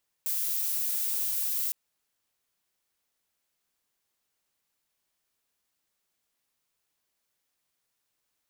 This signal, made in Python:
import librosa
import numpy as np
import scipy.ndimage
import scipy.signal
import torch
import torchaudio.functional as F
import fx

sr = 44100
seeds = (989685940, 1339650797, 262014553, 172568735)

y = fx.noise_colour(sr, seeds[0], length_s=1.46, colour='violet', level_db=-29.5)